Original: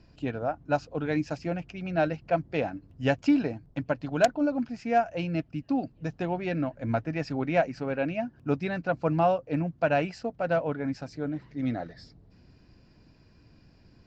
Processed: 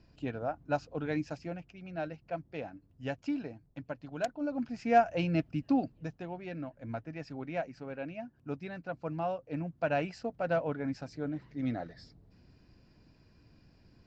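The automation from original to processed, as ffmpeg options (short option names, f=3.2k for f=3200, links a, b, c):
-af "volume=13.5dB,afade=t=out:st=1.11:d=0.61:silence=0.473151,afade=t=in:st=4.36:d=0.59:silence=0.266073,afade=t=out:st=5.73:d=0.46:silence=0.281838,afade=t=in:st=9.22:d=1.05:silence=0.446684"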